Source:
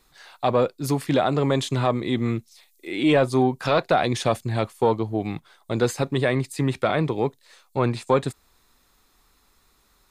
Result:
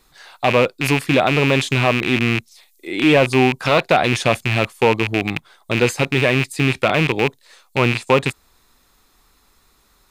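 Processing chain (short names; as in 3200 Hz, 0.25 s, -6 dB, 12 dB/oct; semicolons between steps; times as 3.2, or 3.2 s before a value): rattling part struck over -30 dBFS, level -13 dBFS; gain +4.5 dB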